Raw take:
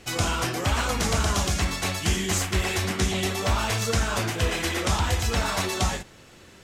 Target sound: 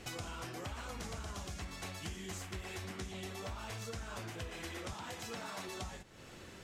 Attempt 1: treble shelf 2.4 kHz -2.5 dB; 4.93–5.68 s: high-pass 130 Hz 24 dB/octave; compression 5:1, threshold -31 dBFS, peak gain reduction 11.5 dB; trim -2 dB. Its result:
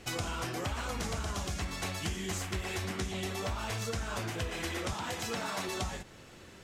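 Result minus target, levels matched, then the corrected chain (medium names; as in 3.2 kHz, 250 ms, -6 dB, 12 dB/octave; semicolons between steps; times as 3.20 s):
compression: peak gain reduction -8 dB
treble shelf 2.4 kHz -2.5 dB; 4.93–5.68 s: high-pass 130 Hz 24 dB/octave; compression 5:1, threshold -41 dBFS, peak gain reduction 19.5 dB; trim -2 dB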